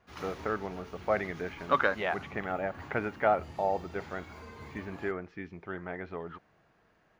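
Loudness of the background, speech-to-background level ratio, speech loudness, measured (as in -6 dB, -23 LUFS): -48.0 LUFS, 14.5 dB, -33.5 LUFS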